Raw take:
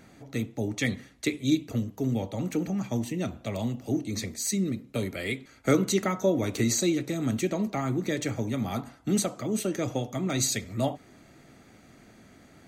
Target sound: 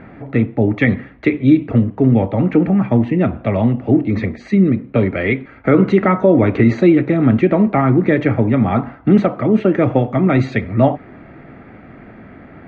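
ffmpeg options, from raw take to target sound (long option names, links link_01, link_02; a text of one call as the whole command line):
ffmpeg -i in.wav -af "lowpass=frequency=2200:width=0.5412,lowpass=frequency=2200:width=1.3066,alimiter=level_in=16.5dB:limit=-1dB:release=50:level=0:latency=1,volume=-1dB" out.wav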